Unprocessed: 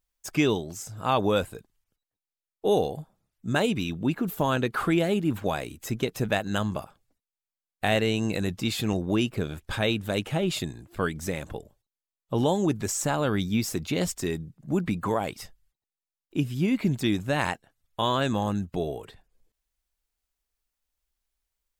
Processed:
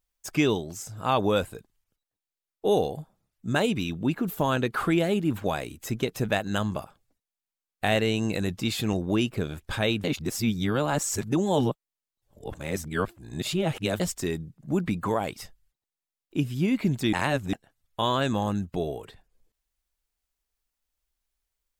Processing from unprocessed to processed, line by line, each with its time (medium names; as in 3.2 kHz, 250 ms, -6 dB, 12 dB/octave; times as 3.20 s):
10.04–14.00 s: reverse
17.13–17.53 s: reverse